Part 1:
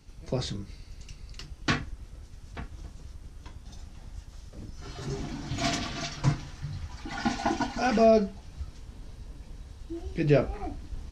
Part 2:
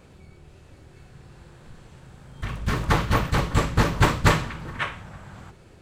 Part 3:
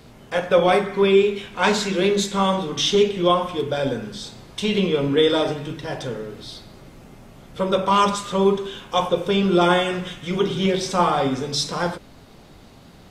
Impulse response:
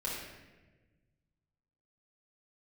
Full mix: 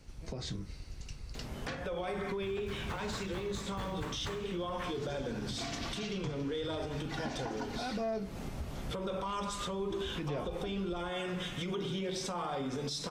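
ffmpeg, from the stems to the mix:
-filter_complex "[0:a]volume=0.944[s0];[1:a]flanger=delay=9.5:depth=9.9:regen=71:speed=0.4:shape=triangular,acrusher=bits=7:mode=log:mix=0:aa=0.000001,volume=0.316[s1];[2:a]alimiter=limit=0.075:level=0:latency=1:release=213,adelay=1350,volume=1.33[s2];[s0][s2]amix=inputs=2:normalize=0,asoftclip=type=tanh:threshold=0.2,acompressor=threshold=0.0316:ratio=6,volume=1[s3];[s1][s3]amix=inputs=2:normalize=0,alimiter=level_in=1.68:limit=0.0631:level=0:latency=1:release=237,volume=0.596"

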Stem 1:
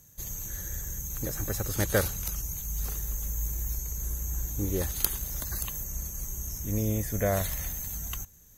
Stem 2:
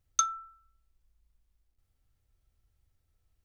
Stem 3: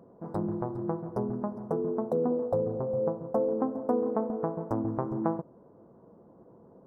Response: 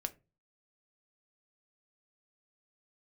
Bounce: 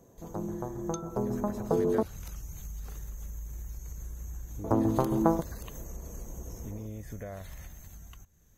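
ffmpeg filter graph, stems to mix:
-filter_complex "[0:a]acompressor=threshold=0.0251:ratio=3,lowpass=f=2500:p=1,volume=0.75[s0];[1:a]adelay=750,volume=0.794[s1];[2:a]volume=0.596,asplit=3[s2][s3][s4];[s2]atrim=end=2.03,asetpts=PTS-STARTPTS,afade=t=out:st=2.026:d=0.004:c=hsin[s5];[s3]atrim=start=2.03:end=4.64,asetpts=PTS-STARTPTS,volume=0[s6];[s4]atrim=start=4.64,asetpts=PTS-STARTPTS,afade=t=in:d=0.004:c=hsin[s7];[s5][s6][s7]concat=n=3:v=0:a=1[s8];[s0][s1]amix=inputs=2:normalize=0,acompressor=threshold=0.00282:ratio=2.5,volume=1[s9];[s8][s9]amix=inputs=2:normalize=0,dynaudnorm=f=390:g=7:m=2.82"

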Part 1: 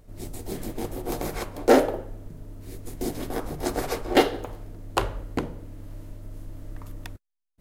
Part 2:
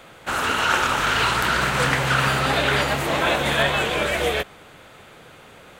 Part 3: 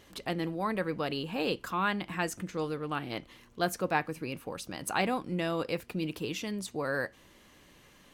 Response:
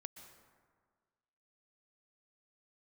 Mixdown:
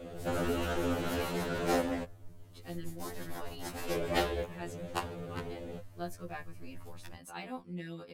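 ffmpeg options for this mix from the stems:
-filter_complex "[0:a]equalizer=f=250:t=o:w=2.3:g=-11.5,volume=0.501[s0];[1:a]lowshelf=f=750:t=q:w=1.5:g=12.5,flanger=delay=15:depth=4.2:speed=1.6,acompressor=threshold=0.0562:ratio=6,volume=0.596,asplit=3[s1][s2][s3];[s1]atrim=end=2.04,asetpts=PTS-STARTPTS,afade=t=out:st=2.036:d=0.004:c=hsin[s4];[s2]atrim=start=2.04:end=3.89,asetpts=PTS-STARTPTS,volume=0[s5];[s3]atrim=start=3.89,asetpts=PTS-STARTPTS,afade=t=in:d=0.004:c=hsin[s6];[s4][s5][s6]concat=n=3:v=0:a=1[s7];[2:a]adelay=2400,volume=0.266[s8];[s0][s7][s8]amix=inputs=3:normalize=0,lowshelf=f=240:g=3.5,afftfilt=real='re*2*eq(mod(b,4),0)':imag='im*2*eq(mod(b,4),0)':win_size=2048:overlap=0.75"

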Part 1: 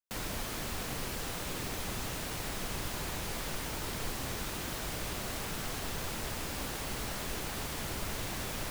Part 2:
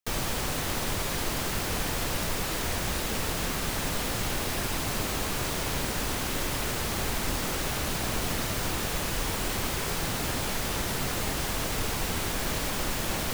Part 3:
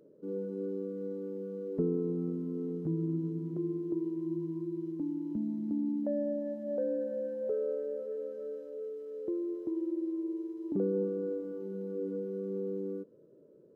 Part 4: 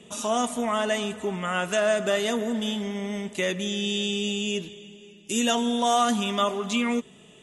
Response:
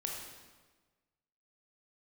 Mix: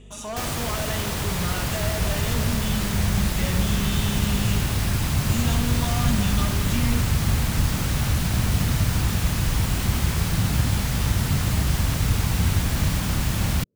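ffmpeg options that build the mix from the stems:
-filter_complex "[0:a]volume=0.15[s0];[1:a]highpass=69,adelay=300,volume=0.841,asplit=2[s1][s2];[s2]volume=0.531[s3];[2:a]volume=0.158[s4];[3:a]asoftclip=type=hard:threshold=0.0562,aeval=exprs='val(0)+0.00794*(sin(2*PI*50*n/s)+sin(2*PI*2*50*n/s)/2+sin(2*PI*3*50*n/s)/3+sin(2*PI*4*50*n/s)/4+sin(2*PI*5*50*n/s)/5)':c=same,volume=0.422,asplit=2[s5][s6];[s6]volume=0.668[s7];[4:a]atrim=start_sample=2205[s8];[s3][s7]amix=inputs=2:normalize=0[s9];[s9][s8]afir=irnorm=-1:irlink=0[s10];[s0][s1][s4][s5][s10]amix=inputs=5:normalize=0,asubboost=boost=8.5:cutoff=140"

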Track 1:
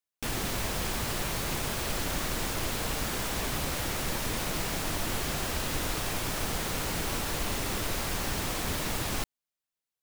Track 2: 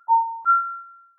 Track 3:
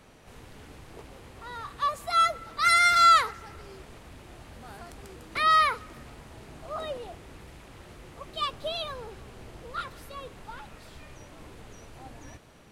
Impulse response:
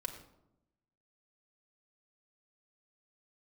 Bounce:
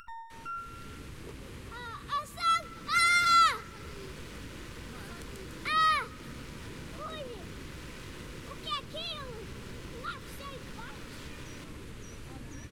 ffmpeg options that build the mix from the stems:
-filter_complex "[0:a]highpass=240,aemphasis=mode=reproduction:type=bsi,adelay=2400,volume=0.299,asplit=2[s0][s1];[s1]volume=0.282[s2];[1:a]highpass=1300,volume=0.211,asplit=2[s3][s4];[s4]volume=0.531[s5];[2:a]adynamicequalizer=threshold=0.00355:dfrequency=180:dqfactor=0.73:tfrequency=180:tqfactor=0.73:attack=5:release=100:ratio=0.375:range=2.5:mode=boostabove:tftype=bell,adelay=300,volume=0.708[s6];[s0][s3]amix=inputs=2:normalize=0,aeval=exprs='max(val(0),0)':c=same,acompressor=threshold=0.00355:ratio=6,volume=1[s7];[3:a]atrim=start_sample=2205[s8];[s2][s5]amix=inputs=2:normalize=0[s9];[s9][s8]afir=irnorm=-1:irlink=0[s10];[s6][s7][s10]amix=inputs=3:normalize=0,equalizer=f=730:w=2.2:g=-14,acompressor=mode=upward:threshold=0.0158:ratio=2.5"

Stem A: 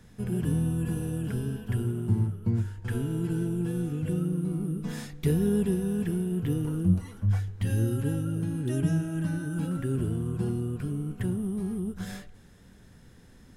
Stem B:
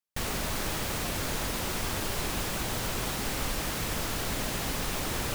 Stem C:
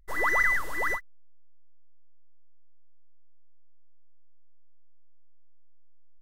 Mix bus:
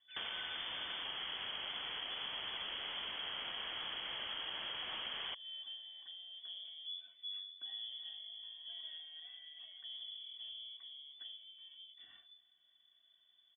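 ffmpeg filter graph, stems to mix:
-filter_complex "[0:a]aecho=1:1:2.5:0.98,aeval=exprs='(tanh(7.08*val(0)+0.5)-tanh(0.5))/7.08':c=same,volume=0.119[s0];[1:a]highpass=290,lowshelf=f=430:g=9.5,volume=0.891[s1];[2:a]volume=0.119[s2];[s0][s1][s2]amix=inputs=3:normalize=0,equalizer=f=930:w=1.2:g=-7.5,lowpass=f=3000:t=q:w=0.5098,lowpass=f=3000:t=q:w=0.6013,lowpass=f=3000:t=q:w=0.9,lowpass=f=3000:t=q:w=2.563,afreqshift=-3500,acompressor=threshold=0.00891:ratio=4"

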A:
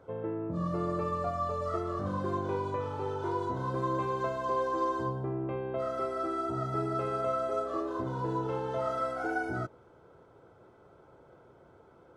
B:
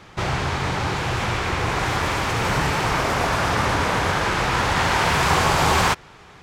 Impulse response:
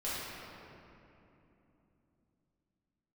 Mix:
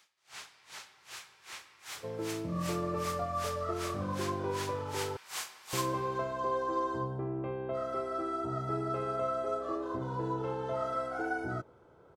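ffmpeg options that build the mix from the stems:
-filter_complex "[0:a]adelay=1950,volume=0.794,asplit=3[s0][s1][s2];[s0]atrim=end=5.17,asetpts=PTS-STARTPTS,afade=t=out:st=5.166:d=0.004:c=hsin[s3];[s1]atrim=start=5.17:end=5.73,asetpts=PTS-STARTPTS,volume=0[s4];[s2]atrim=start=5.73,asetpts=PTS-STARTPTS,afade=t=in:d=0.004:c=hsin[s5];[s3][s4][s5]concat=n=3:v=0:a=1[s6];[1:a]aderivative,aeval=exprs='val(0)*pow(10,-35*(0.5-0.5*cos(2*PI*2.6*n/s))/20)':c=same,volume=0.447,asplit=2[s7][s8];[s8]volume=0.237[s9];[2:a]atrim=start_sample=2205[s10];[s9][s10]afir=irnorm=-1:irlink=0[s11];[s6][s7][s11]amix=inputs=3:normalize=0"

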